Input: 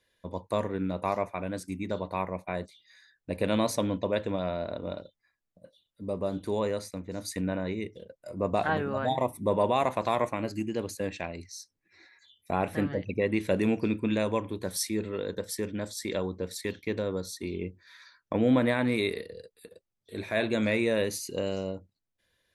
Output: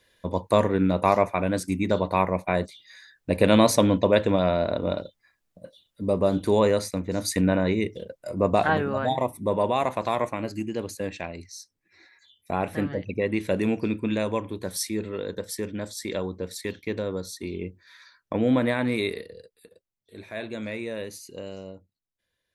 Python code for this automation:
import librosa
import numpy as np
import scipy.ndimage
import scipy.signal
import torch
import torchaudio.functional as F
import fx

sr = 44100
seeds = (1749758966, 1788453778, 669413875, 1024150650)

y = fx.gain(x, sr, db=fx.line((8.06, 9.0), (9.36, 1.5), (19.06, 1.5), (20.15, -6.5)))